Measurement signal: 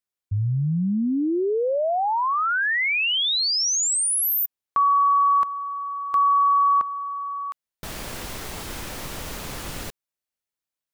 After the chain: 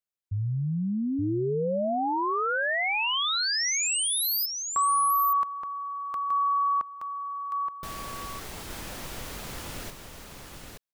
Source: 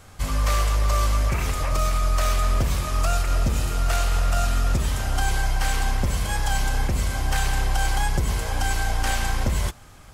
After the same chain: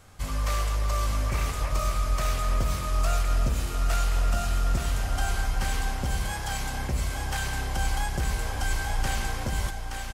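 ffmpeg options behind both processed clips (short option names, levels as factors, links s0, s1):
-af "aecho=1:1:873:0.531,volume=0.531"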